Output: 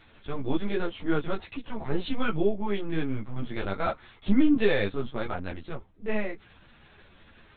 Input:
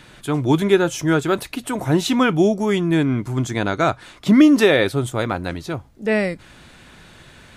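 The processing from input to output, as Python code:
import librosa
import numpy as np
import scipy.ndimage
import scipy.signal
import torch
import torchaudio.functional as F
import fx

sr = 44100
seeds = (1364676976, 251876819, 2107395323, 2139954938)

y = fx.lpc_vocoder(x, sr, seeds[0], excitation='pitch_kept', order=8)
y = fx.ensemble(y, sr)
y = y * 10.0 ** (-6.5 / 20.0)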